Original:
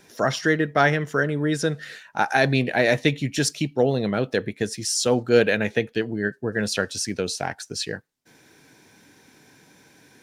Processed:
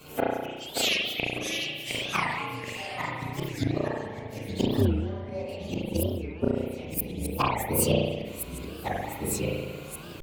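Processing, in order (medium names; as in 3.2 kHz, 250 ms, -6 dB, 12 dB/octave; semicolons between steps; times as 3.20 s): frequency axis rescaled in octaves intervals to 126%; 0.49–1.20 s: inverse Chebyshev high-pass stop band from 870 Hz, stop band 70 dB; 3.28–3.76 s: transient shaper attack -7 dB, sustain +7 dB; inverted gate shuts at -22 dBFS, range -31 dB; spring tank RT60 1.2 s, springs 33 ms, chirp 40 ms, DRR -5 dB; ever faster or slower copies 565 ms, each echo -2 st, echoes 3, each echo -6 dB; 4.82–5.49 s: distance through air 110 m; warped record 45 rpm, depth 250 cents; trim +9 dB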